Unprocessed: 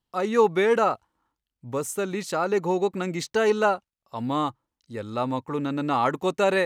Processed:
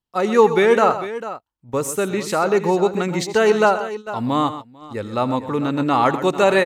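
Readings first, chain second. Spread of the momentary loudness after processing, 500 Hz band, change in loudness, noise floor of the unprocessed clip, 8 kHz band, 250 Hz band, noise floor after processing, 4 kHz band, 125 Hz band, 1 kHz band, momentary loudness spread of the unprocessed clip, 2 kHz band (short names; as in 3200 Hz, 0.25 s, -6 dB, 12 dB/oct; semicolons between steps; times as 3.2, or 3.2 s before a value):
13 LU, +6.5 dB, +6.0 dB, under -85 dBFS, +6.5 dB, +6.5 dB, -59 dBFS, +6.5 dB, +6.5 dB, +6.5 dB, 12 LU, +6.5 dB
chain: tapped delay 83/127/446 ms -19/-12.5/-13.5 dB; gate -36 dBFS, range -11 dB; gain +6 dB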